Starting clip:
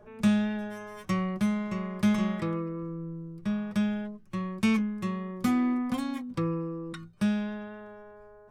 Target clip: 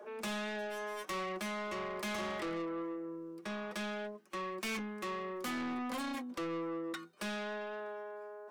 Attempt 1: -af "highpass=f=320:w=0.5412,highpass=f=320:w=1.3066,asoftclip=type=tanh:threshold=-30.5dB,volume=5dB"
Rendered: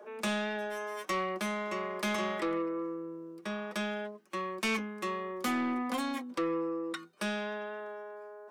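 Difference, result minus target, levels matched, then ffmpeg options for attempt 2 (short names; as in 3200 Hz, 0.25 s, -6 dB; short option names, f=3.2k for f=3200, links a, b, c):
soft clip: distortion -8 dB
-af "highpass=f=320:w=0.5412,highpass=f=320:w=1.3066,asoftclip=type=tanh:threshold=-40.5dB,volume=5dB"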